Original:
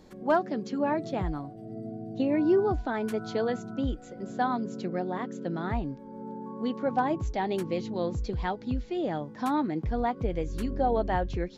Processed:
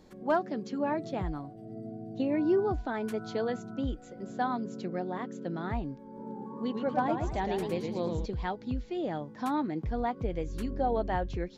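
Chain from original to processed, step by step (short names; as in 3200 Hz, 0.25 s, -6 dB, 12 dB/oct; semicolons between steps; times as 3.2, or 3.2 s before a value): 6.04–8.26 warbling echo 0.113 s, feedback 38%, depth 137 cents, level -5 dB; gain -3 dB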